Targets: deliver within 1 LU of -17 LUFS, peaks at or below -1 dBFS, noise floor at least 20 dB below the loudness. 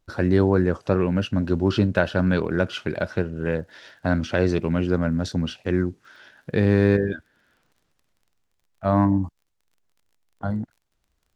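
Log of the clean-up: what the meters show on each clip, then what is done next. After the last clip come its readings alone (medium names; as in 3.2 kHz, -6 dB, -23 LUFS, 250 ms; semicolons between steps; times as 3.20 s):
tick rate 26 per s; loudness -23.0 LUFS; peak level -4.5 dBFS; loudness target -17.0 LUFS
-> de-click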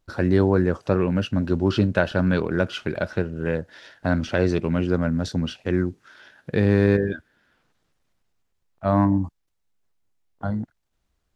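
tick rate 0 per s; loudness -23.0 LUFS; peak level -4.5 dBFS; loudness target -17.0 LUFS
-> trim +6 dB; peak limiter -1 dBFS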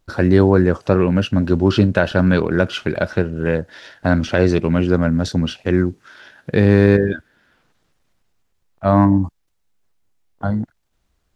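loudness -17.0 LUFS; peak level -1.0 dBFS; noise floor -68 dBFS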